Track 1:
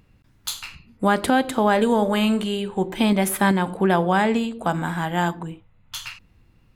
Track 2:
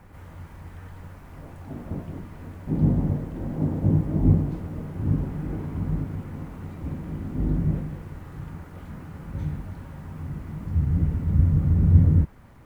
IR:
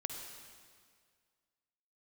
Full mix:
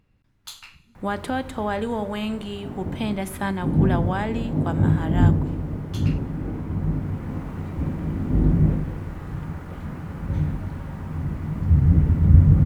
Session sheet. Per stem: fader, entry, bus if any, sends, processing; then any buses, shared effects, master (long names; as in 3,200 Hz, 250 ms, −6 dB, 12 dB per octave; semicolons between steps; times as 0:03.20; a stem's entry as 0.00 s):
−8.5 dB, 0.00 s, send −17 dB, no processing
+2.5 dB, 0.95 s, send −4.5 dB, automatic ducking −8 dB, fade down 2.00 s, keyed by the first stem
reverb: on, RT60 1.9 s, pre-delay 46 ms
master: high-shelf EQ 6,500 Hz −6 dB